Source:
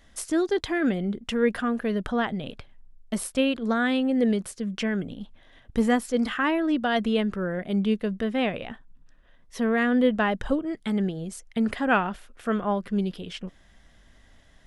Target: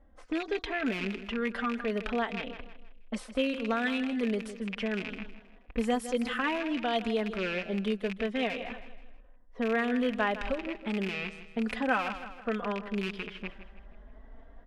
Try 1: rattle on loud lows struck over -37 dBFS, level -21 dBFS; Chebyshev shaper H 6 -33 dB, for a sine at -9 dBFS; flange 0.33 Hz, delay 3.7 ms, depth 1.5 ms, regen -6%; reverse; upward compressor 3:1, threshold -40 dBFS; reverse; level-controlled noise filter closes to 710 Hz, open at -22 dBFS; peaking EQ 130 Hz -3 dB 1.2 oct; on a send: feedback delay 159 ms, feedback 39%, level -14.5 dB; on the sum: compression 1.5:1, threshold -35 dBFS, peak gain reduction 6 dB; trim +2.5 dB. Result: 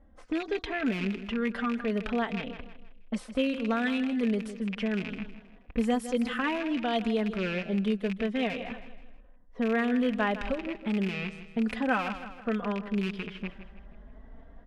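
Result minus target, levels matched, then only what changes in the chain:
125 Hz band +3.5 dB
change: peaking EQ 130 Hz -15 dB 1.2 oct

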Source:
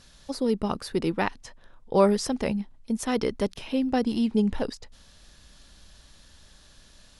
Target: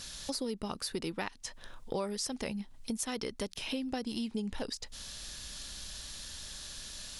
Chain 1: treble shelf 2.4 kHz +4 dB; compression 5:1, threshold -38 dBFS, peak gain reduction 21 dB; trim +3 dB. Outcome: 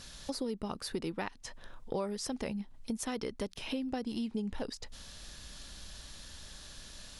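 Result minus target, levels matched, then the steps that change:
4 kHz band -3.5 dB
change: treble shelf 2.4 kHz +12 dB

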